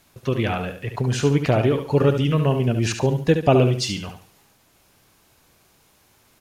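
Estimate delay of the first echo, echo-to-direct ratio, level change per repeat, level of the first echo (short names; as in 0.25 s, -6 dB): 71 ms, -7.5 dB, -10.0 dB, -8.0 dB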